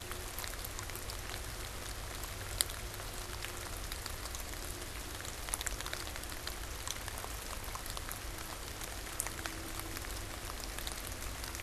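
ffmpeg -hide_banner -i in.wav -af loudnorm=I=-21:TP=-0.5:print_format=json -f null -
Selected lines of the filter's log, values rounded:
"input_i" : "-41.0",
"input_tp" : "-5.1",
"input_lra" : "1.0",
"input_thresh" : "-51.0",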